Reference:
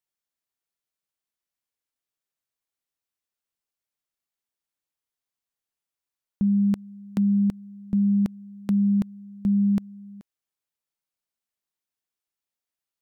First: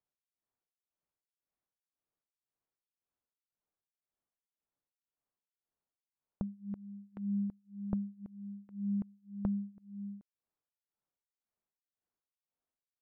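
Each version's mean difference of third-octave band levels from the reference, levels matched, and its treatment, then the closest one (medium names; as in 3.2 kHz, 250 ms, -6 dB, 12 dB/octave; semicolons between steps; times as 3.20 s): 2.0 dB: low-pass 1.1 kHz 12 dB/octave; compression, threshold -36 dBFS, peak gain reduction 15 dB; tremolo 1.9 Hz, depth 96%; trim +3.5 dB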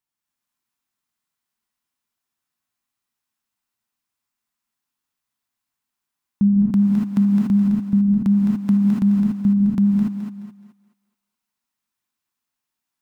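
7.0 dB: ten-band graphic EQ 125 Hz +4 dB, 250 Hz +7 dB, 500 Hz -8 dB, 1 kHz +7 dB; thinning echo 212 ms, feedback 35%, high-pass 300 Hz, level -5 dB; gated-style reverb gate 310 ms rising, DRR -3 dB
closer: first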